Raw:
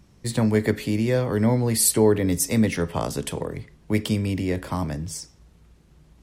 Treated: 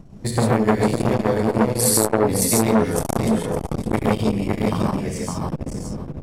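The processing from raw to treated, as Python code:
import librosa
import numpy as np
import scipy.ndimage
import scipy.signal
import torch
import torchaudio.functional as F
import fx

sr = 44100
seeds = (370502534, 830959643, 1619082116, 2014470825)

p1 = fx.dmg_wind(x, sr, seeds[0], corner_hz=210.0, level_db=-33.0)
p2 = fx.transient(p1, sr, attack_db=10, sustain_db=-10)
p3 = p2 + fx.echo_feedback(p2, sr, ms=560, feedback_pct=20, wet_db=-5, dry=0)
p4 = fx.rev_gated(p3, sr, seeds[1], gate_ms=180, shape='rising', drr_db=-3.5)
p5 = fx.transformer_sat(p4, sr, knee_hz=930.0)
y = F.gain(torch.from_numpy(p5), -2.5).numpy()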